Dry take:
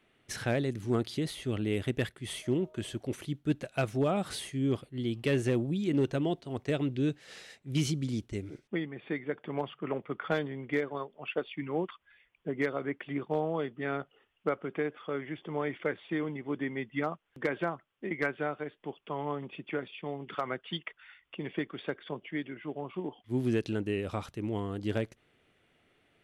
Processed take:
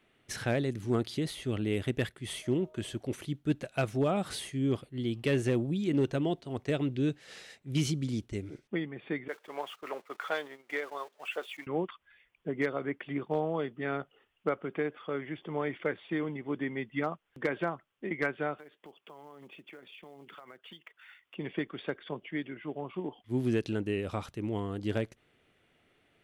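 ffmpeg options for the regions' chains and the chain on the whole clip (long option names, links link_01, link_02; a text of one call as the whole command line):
ffmpeg -i in.wav -filter_complex "[0:a]asettb=1/sr,asplit=3[link_01][link_02][link_03];[link_01]atrim=end=9.284[link_04];[link_02]atrim=start=9.28:end=11.67,asetpts=PTS-STARTPTS,afade=type=in:duration=0.004:curve=qsin,afade=type=out:start_time=2.386:duration=0.004:curve=qsin,aeval=exprs='val(0)+0.5*0.00422*sgn(val(0))':channel_layout=same,highpass=590,agate=range=-15dB:threshold=-48dB:ratio=16:release=100:detection=peak[link_05];[link_03]atrim=start=11.666[link_06];[link_04][link_05]acrossfade=duration=0.004:curve1=hsin:curve2=qsin[link_07];[link_07][link_06]acrossfade=duration=0.004:curve1=qsin:curve2=hsin,asettb=1/sr,asplit=3[link_08][link_09][link_10];[link_08]atrim=end=18.584[link_11];[link_09]atrim=start=18.58:end=21.35,asetpts=PTS-STARTPTS,afade=type=in:duration=0.004:curve=qsin,afade=type=out:start_time=2.766:duration=0.004:curve=qsin,highpass=frequency=310:poles=1,acompressor=threshold=-47dB:ratio=6:attack=3.2:release=140:knee=1:detection=peak,acrusher=bits=6:mode=log:mix=0:aa=0.000001[link_12];[link_10]atrim=start=21.346[link_13];[link_11][link_12]acrossfade=duration=0.004:curve1=hsin:curve2=qsin[link_14];[link_14][link_13]acrossfade=duration=0.004:curve1=qsin:curve2=hsin" out.wav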